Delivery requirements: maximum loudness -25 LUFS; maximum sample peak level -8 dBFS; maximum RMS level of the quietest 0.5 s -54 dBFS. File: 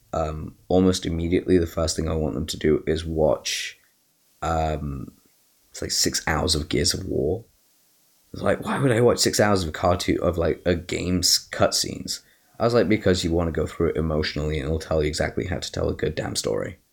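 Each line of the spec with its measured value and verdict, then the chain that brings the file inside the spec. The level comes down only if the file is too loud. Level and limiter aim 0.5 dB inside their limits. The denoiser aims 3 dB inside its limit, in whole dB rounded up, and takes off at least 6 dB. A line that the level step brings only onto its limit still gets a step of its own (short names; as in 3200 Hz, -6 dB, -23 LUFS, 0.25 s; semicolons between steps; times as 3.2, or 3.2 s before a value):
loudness -23.0 LUFS: fail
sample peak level -6.5 dBFS: fail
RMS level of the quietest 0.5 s -63 dBFS: OK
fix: gain -2.5 dB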